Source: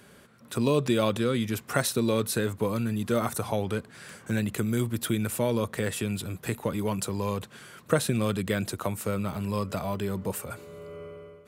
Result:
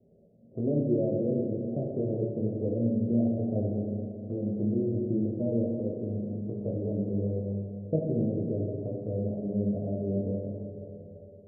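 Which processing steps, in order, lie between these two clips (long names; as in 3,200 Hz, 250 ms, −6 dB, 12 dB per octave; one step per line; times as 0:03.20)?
spectral envelope flattened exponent 0.6
Butterworth low-pass 660 Hz 72 dB per octave
dynamic equaliser 310 Hz, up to +5 dB, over −42 dBFS, Q 2.4
chorus effect 0.35 Hz, delay 17.5 ms, depth 3 ms
four-comb reverb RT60 2.6 s, combs from 30 ms, DRR −1 dB
level −2 dB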